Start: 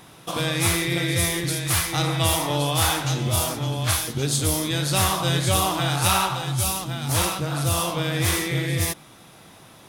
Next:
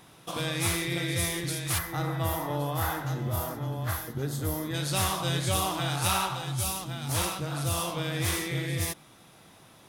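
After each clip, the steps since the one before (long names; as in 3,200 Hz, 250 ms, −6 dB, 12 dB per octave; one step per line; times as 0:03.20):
gain on a spectral selection 0:01.78–0:04.74, 2,100–11,000 Hz −11 dB
level −6.5 dB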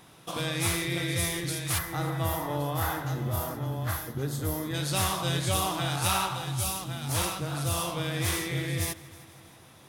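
echo machine with several playback heads 159 ms, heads first and second, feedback 58%, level −23.5 dB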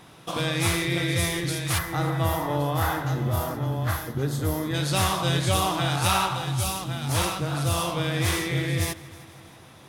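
high-shelf EQ 7,400 Hz −7 dB
level +5 dB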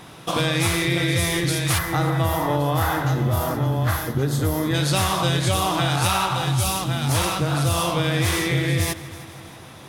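downward compressor, threshold −24 dBFS, peak gain reduction 6.5 dB
level +7 dB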